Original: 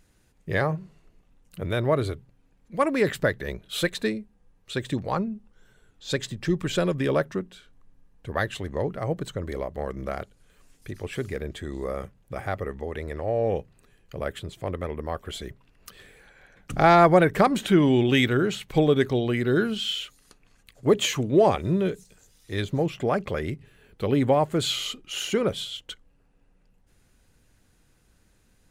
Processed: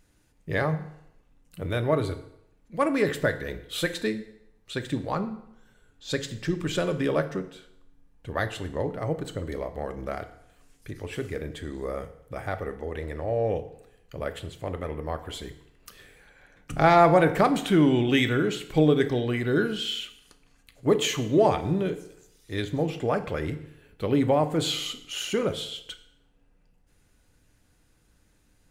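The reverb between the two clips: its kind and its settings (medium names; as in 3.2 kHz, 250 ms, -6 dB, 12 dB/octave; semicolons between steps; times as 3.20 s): FDN reverb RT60 0.79 s, low-frequency decay 0.9×, high-frequency decay 0.85×, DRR 8 dB; trim -2 dB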